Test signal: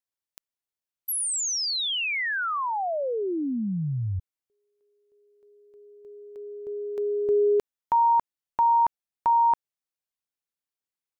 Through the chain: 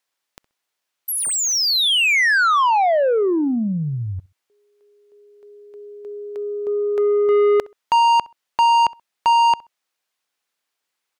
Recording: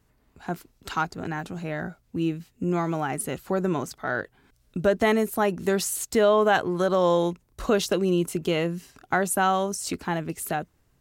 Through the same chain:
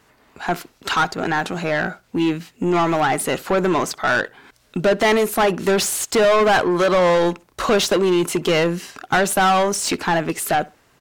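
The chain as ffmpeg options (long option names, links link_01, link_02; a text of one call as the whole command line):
ffmpeg -i in.wav -filter_complex "[0:a]asplit=2[link_01][link_02];[link_02]highpass=frequency=720:poles=1,volume=24dB,asoftclip=type=tanh:threshold=-8.5dB[link_03];[link_01][link_03]amix=inputs=2:normalize=0,lowpass=frequency=4100:poles=1,volume=-6dB,asplit=2[link_04][link_05];[link_05]adelay=65,lowpass=frequency=2800:poles=1,volume=-22dB,asplit=2[link_06][link_07];[link_07]adelay=65,lowpass=frequency=2800:poles=1,volume=0.23[link_08];[link_04][link_06][link_08]amix=inputs=3:normalize=0" out.wav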